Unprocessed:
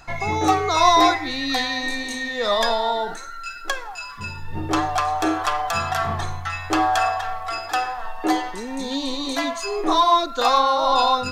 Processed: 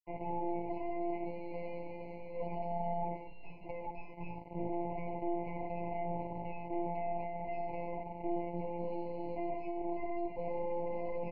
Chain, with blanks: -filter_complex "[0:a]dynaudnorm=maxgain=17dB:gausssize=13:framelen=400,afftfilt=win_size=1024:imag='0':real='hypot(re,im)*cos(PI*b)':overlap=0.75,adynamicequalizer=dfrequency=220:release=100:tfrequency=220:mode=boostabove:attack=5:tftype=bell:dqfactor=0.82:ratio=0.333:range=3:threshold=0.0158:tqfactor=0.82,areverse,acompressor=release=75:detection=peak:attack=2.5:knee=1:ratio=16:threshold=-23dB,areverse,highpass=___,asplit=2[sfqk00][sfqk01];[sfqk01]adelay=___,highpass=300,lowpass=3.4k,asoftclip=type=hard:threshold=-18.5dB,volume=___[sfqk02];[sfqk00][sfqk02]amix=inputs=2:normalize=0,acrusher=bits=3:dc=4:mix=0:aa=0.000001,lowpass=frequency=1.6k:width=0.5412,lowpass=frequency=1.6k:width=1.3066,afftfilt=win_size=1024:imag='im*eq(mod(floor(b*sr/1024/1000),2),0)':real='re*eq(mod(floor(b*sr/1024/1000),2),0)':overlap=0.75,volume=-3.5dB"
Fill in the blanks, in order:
86, 110, -12dB